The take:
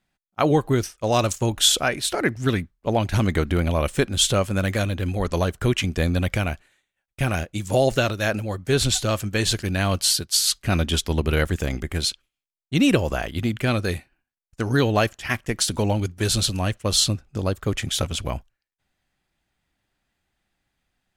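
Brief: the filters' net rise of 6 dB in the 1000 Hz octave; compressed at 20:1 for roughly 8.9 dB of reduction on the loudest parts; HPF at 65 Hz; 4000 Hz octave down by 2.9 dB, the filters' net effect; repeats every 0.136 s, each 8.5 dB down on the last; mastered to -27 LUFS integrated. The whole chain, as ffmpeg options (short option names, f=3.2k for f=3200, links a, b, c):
-af "highpass=65,equalizer=f=1k:t=o:g=8.5,equalizer=f=4k:t=o:g=-4,acompressor=threshold=-20dB:ratio=20,aecho=1:1:136|272|408|544:0.376|0.143|0.0543|0.0206,volume=-1dB"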